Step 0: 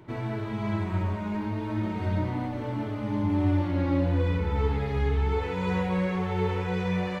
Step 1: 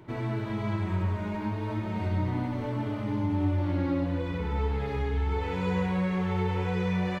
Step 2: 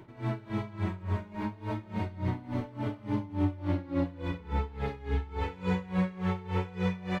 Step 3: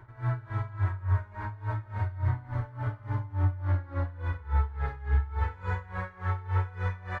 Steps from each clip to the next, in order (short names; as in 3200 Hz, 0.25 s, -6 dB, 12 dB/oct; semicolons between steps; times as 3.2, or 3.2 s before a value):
compressor 2:1, threshold -28 dBFS, peak gain reduction 5 dB; echo 98 ms -6.5 dB
on a send at -14.5 dB: reverb RT60 0.50 s, pre-delay 3 ms; on the sum: dB-linear tremolo 3.5 Hz, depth 20 dB; gain +1.5 dB
EQ curve 120 Hz 0 dB, 180 Hz -24 dB, 1600 Hz +1 dB, 2600 Hz -16 dB, 5800 Hz -14 dB; gain +6 dB